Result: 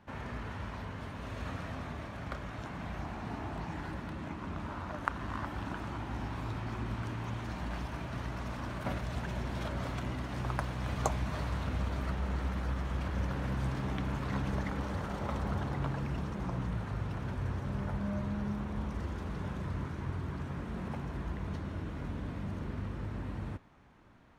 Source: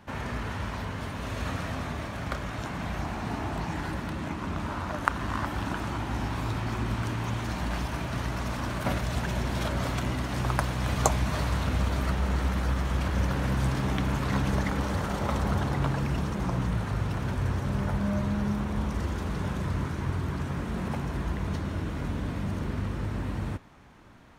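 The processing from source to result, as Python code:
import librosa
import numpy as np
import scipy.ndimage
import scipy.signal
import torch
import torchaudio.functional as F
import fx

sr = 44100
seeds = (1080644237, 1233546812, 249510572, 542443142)

y = fx.high_shelf(x, sr, hz=5000.0, db=-8.5)
y = y * 10.0 ** (-7.0 / 20.0)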